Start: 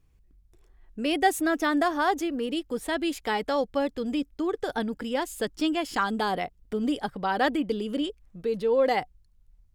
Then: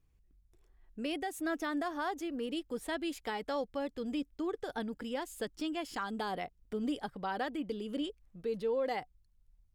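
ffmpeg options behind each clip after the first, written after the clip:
ffmpeg -i in.wav -af "alimiter=limit=-18.5dB:level=0:latency=1:release=265,volume=-7.5dB" out.wav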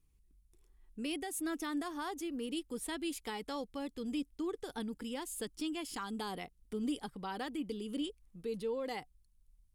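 ffmpeg -i in.wav -af "equalizer=frequency=100:width_type=o:width=0.67:gain=-5,equalizer=frequency=630:width_type=o:width=0.67:gain=-10,equalizer=frequency=1600:width_type=o:width=0.67:gain=-6,equalizer=frequency=10000:width_type=o:width=0.67:gain=9" out.wav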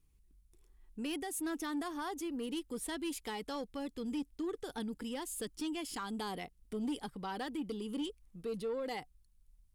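ffmpeg -i in.wav -af "asoftclip=type=tanh:threshold=-32dB,volume=1.5dB" out.wav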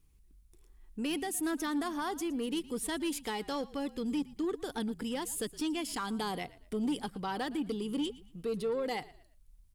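ffmpeg -i in.wav -filter_complex "[0:a]asplit=4[link_01][link_02][link_03][link_04];[link_02]adelay=115,afreqshift=-47,volume=-19.5dB[link_05];[link_03]adelay=230,afreqshift=-94,volume=-29.4dB[link_06];[link_04]adelay=345,afreqshift=-141,volume=-39.3dB[link_07];[link_01][link_05][link_06][link_07]amix=inputs=4:normalize=0,volume=4.5dB" out.wav

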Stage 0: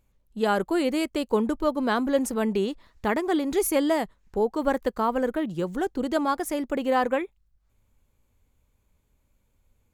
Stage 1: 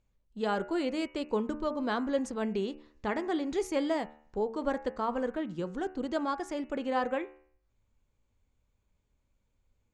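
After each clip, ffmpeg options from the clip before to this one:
ffmpeg -i in.wav -af "lowpass=frequency=7300:width=0.5412,lowpass=frequency=7300:width=1.3066,bandreject=frequency=74.96:width_type=h:width=4,bandreject=frequency=149.92:width_type=h:width=4,bandreject=frequency=224.88:width_type=h:width=4,bandreject=frequency=299.84:width_type=h:width=4,bandreject=frequency=374.8:width_type=h:width=4,bandreject=frequency=449.76:width_type=h:width=4,bandreject=frequency=524.72:width_type=h:width=4,bandreject=frequency=599.68:width_type=h:width=4,bandreject=frequency=674.64:width_type=h:width=4,bandreject=frequency=749.6:width_type=h:width=4,bandreject=frequency=824.56:width_type=h:width=4,bandreject=frequency=899.52:width_type=h:width=4,bandreject=frequency=974.48:width_type=h:width=4,bandreject=frequency=1049.44:width_type=h:width=4,bandreject=frequency=1124.4:width_type=h:width=4,bandreject=frequency=1199.36:width_type=h:width=4,bandreject=frequency=1274.32:width_type=h:width=4,bandreject=frequency=1349.28:width_type=h:width=4,bandreject=frequency=1424.24:width_type=h:width=4,bandreject=frequency=1499.2:width_type=h:width=4,bandreject=frequency=1574.16:width_type=h:width=4,bandreject=frequency=1649.12:width_type=h:width=4,bandreject=frequency=1724.08:width_type=h:width=4,bandreject=frequency=1799.04:width_type=h:width=4,bandreject=frequency=1874:width_type=h:width=4,bandreject=frequency=1948.96:width_type=h:width=4,bandreject=frequency=2023.92:width_type=h:width=4,bandreject=frequency=2098.88:width_type=h:width=4,bandreject=frequency=2173.84:width_type=h:width=4,bandreject=frequency=2248.8:width_type=h:width=4,bandreject=frequency=2323.76:width_type=h:width=4,bandreject=frequency=2398.72:width_type=h:width=4,bandreject=frequency=2473.68:width_type=h:width=4,bandreject=frequency=2548.64:width_type=h:width=4,bandreject=frequency=2623.6:width_type=h:width=4,bandreject=frequency=2698.56:width_type=h:width=4,bandreject=frequency=2773.52:width_type=h:width=4,bandreject=frequency=2848.48:width_type=h:width=4,bandreject=frequency=2923.44:width_type=h:width=4,volume=-6.5dB" out.wav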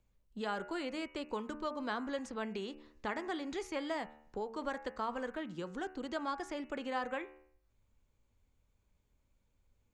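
ffmpeg -i in.wav -filter_complex "[0:a]acrossover=split=170|910|2100|5000[link_01][link_02][link_03][link_04][link_05];[link_01]acompressor=threshold=-56dB:ratio=4[link_06];[link_02]acompressor=threshold=-41dB:ratio=4[link_07];[link_03]acompressor=threshold=-37dB:ratio=4[link_08];[link_04]acompressor=threshold=-50dB:ratio=4[link_09];[link_05]acompressor=threshold=-59dB:ratio=4[link_10];[link_06][link_07][link_08][link_09][link_10]amix=inputs=5:normalize=0" out.wav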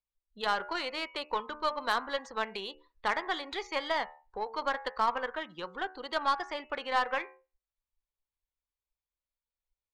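ffmpeg -i in.wav -af "equalizer=frequency=125:width_type=o:width=1:gain=-5,equalizer=frequency=250:width_type=o:width=1:gain=-8,equalizer=frequency=500:width_type=o:width=1:gain=3,equalizer=frequency=1000:width_type=o:width=1:gain=9,equalizer=frequency=2000:width_type=o:width=1:gain=5,equalizer=frequency=4000:width_type=o:width=1:gain=12,afftdn=noise_reduction=24:noise_floor=-47,aeval=exprs='0.168*(cos(1*acos(clip(val(0)/0.168,-1,1)))-cos(1*PI/2))+0.0119*(cos(5*acos(clip(val(0)/0.168,-1,1)))-cos(5*PI/2))+0.00596*(cos(6*acos(clip(val(0)/0.168,-1,1)))-cos(6*PI/2))+0.0119*(cos(7*acos(clip(val(0)/0.168,-1,1)))-cos(7*PI/2))':channel_layout=same" out.wav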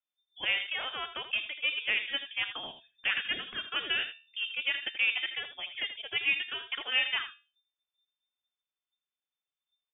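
ffmpeg -i in.wav -af "aecho=1:1:81:0.282,lowpass=frequency=3100:width_type=q:width=0.5098,lowpass=frequency=3100:width_type=q:width=0.6013,lowpass=frequency=3100:width_type=q:width=0.9,lowpass=frequency=3100:width_type=q:width=2.563,afreqshift=-3600" out.wav

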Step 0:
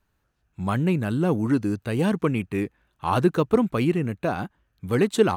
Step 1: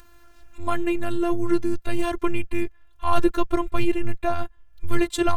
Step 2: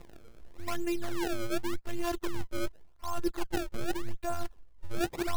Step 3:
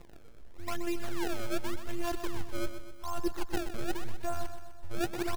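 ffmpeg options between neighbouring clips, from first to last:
ffmpeg -i in.wav -af "acompressor=mode=upward:threshold=-38dB:ratio=2.5,afftfilt=real='hypot(re,im)*cos(PI*b)':imag='0':win_size=512:overlap=0.75,asubboost=boost=11:cutoff=88,volume=5dB" out.wav
ffmpeg -i in.wav -af "acrusher=samples=27:mix=1:aa=0.000001:lfo=1:lforange=43.2:lforate=0.87,areverse,acompressor=threshold=-27dB:ratio=6,areverse" out.wav
ffmpeg -i in.wav -af "aecho=1:1:126|252|378|504|630|756:0.316|0.174|0.0957|0.0526|0.0289|0.0159,volume=-1.5dB" out.wav

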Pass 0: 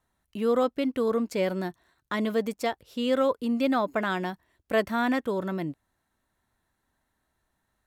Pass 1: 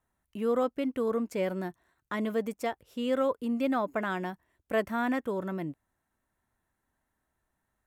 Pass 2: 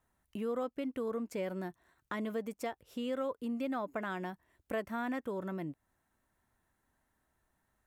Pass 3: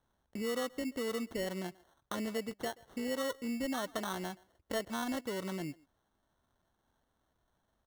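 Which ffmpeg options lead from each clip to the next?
ffmpeg -i in.wav -af "equalizer=frequency=4200:width_type=o:width=0.74:gain=-8,volume=-3.5dB" out.wav
ffmpeg -i in.wav -af "acompressor=threshold=-43dB:ratio=2,volume=2dB" out.wav
ffmpeg -i in.wav -filter_complex "[0:a]asplit=2[link_01][link_02];[link_02]adelay=130,highpass=300,lowpass=3400,asoftclip=type=hard:threshold=-34dB,volume=-21dB[link_03];[link_01][link_03]amix=inputs=2:normalize=0,acrusher=samples=18:mix=1:aa=0.000001" out.wav

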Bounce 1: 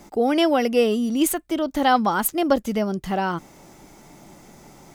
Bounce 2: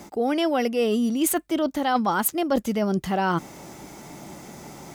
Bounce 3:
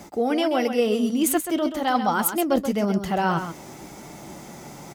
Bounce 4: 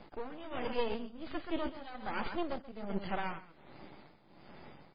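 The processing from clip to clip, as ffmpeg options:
ffmpeg -i in.wav -af "highpass=61,areverse,acompressor=threshold=-26dB:ratio=6,areverse,volume=6dB" out.wav
ffmpeg -i in.wav -filter_complex "[0:a]flanger=delay=1.2:depth=7.4:regen=-60:speed=0.96:shape=triangular,asplit=2[link_01][link_02];[link_02]aecho=0:1:131:0.355[link_03];[link_01][link_03]amix=inputs=2:normalize=0,volume=4.5dB" out.wav
ffmpeg -i in.wav -af "aeval=exprs='max(val(0),0)':channel_layout=same,tremolo=f=1.3:d=0.81,volume=-6.5dB" -ar 11025 -c:a libmp3lame -b:a 16k out.mp3

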